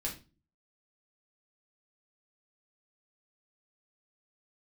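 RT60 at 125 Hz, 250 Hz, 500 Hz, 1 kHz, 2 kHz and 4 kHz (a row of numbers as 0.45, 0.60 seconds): 0.60, 0.55, 0.35, 0.30, 0.30, 0.30 seconds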